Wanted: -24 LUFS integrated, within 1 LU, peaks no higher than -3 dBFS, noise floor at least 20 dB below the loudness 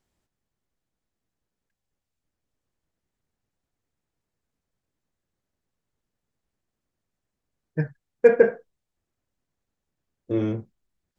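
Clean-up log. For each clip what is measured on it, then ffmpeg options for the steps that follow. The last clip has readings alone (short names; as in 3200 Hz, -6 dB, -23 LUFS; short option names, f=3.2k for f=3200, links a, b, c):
loudness -23.0 LUFS; peak -3.5 dBFS; loudness target -24.0 LUFS
-> -af "volume=-1dB"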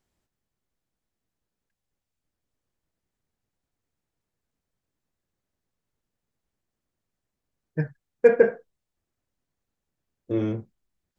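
loudness -24.0 LUFS; peak -4.5 dBFS; noise floor -85 dBFS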